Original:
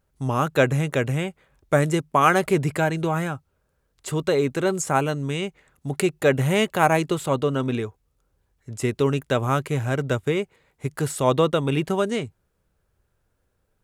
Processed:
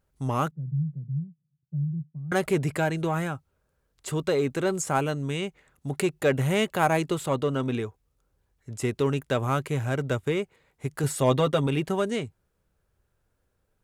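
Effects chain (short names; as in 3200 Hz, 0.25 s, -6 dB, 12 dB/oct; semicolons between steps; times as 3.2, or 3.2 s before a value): in parallel at -6 dB: soft clip -19.5 dBFS, distortion -10 dB; 0.51–2.32 on the sum: Butterworth band-pass 150 Hz, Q 3.3; 11.03–11.67 comb 7.5 ms, depth 64%; gain -6 dB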